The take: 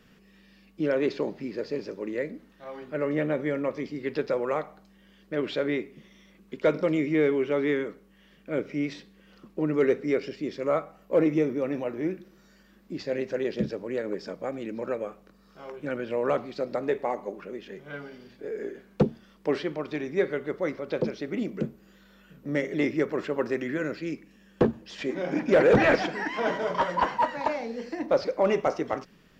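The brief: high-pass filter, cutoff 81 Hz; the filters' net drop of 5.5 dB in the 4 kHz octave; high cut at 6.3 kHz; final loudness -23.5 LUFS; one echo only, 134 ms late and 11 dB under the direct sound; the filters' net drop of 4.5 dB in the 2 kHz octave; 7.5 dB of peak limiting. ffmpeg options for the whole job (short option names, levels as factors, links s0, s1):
-af "highpass=81,lowpass=6300,equalizer=f=2000:t=o:g=-4.5,equalizer=f=4000:t=o:g=-5,alimiter=limit=0.133:level=0:latency=1,aecho=1:1:134:0.282,volume=2.11"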